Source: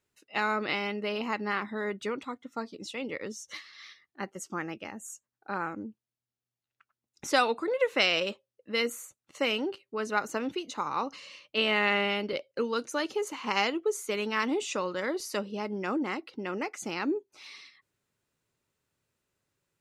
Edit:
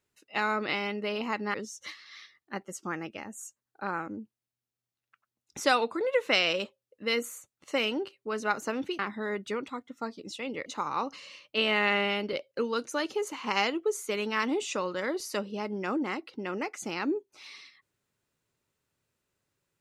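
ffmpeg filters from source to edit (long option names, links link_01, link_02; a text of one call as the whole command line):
ffmpeg -i in.wav -filter_complex "[0:a]asplit=4[link_01][link_02][link_03][link_04];[link_01]atrim=end=1.542[link_05];[link_02]atrim=start=3.208:end=10.662[link_06];[link_03]atrim=start=1.538:end=3.212[link_07];[link_04]atrim=start=10.658[link_08];[link_05][link_06]acrossfade=duration=0.004:curve1=hsin:curve2=hsin[link_09];[link_09][link_07]acrossfade=duration=0.004:curve1=hsin:curve2=hsin[link_10];[link_10][link_08]acrossfade=duration=0.004:curve1=hsin:curve2=hsin" out.wav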